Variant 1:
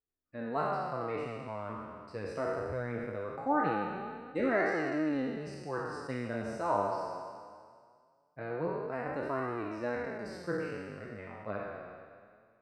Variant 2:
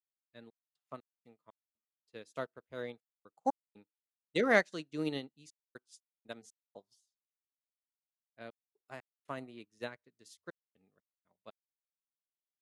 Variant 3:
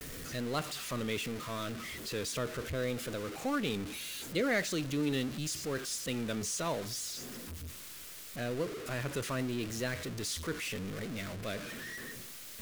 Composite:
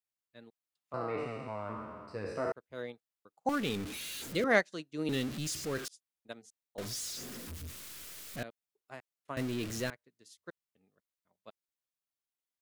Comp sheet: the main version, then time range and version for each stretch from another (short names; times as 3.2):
2
0.94–2.52 from 1
3.49–4.44 from 3
5.09–5.88 from 3
6.78–8.43 from 3
9.37–9.9 from 3